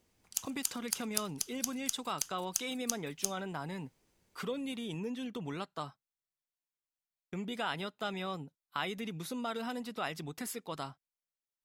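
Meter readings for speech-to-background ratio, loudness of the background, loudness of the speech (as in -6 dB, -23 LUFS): -2.0 dB, -37.5 LUFS, -39.5 LUFS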